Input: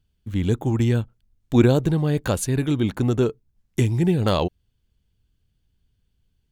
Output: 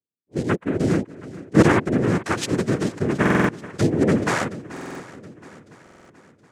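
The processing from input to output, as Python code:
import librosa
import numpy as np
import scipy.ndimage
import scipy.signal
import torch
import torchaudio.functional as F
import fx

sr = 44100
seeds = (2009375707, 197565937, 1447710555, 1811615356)

y = fx.bin_expand(x, sr, power=1.5)
y = fx.noise_vocoder(y, sr, seeds[0], bands=3)
y = fx.echo_swing(y, sr, ms=721, ratio=1.5, feedback_pct=42, wet_db=-17.0)
y = fx.buffer_glitch(y, sr, at_s=(3.21, 4.72, 5.82), block=2048, repeats=5)
y = fx.attack_slew(y, sr, db_per_s=600.0)
y = y * librosa.db_to_amplitude(2.5)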